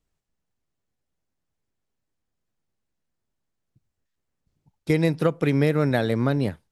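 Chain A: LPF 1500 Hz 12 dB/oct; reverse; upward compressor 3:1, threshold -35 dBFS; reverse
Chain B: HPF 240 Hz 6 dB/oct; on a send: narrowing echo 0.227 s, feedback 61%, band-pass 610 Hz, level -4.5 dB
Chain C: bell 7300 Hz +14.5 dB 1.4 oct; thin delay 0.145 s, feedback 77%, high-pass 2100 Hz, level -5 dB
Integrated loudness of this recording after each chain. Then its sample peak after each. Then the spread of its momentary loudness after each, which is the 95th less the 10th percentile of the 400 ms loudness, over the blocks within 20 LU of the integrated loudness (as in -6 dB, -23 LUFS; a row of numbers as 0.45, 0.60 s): -23.0, -24.5, -22.0 LUFS; -8.0, -9.0, -6.0 dBFS; 5, 5, 5 LU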